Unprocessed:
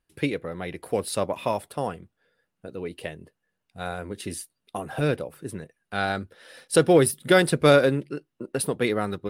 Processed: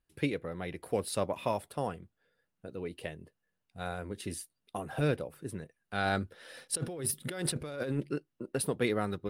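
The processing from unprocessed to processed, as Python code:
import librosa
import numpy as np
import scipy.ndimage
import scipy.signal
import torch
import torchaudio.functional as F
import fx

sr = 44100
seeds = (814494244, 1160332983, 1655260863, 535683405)

y = fx.low_shelf(x, sr, hz=120.0, db=4.5)
y = fx.over_compress(y, sr, threshold_db=-26.0, ratio=-1.0, at=(6.03, 8.17), fade=0.02)
y = F.gain(torch.from_numpy(y), -6.0).numpy()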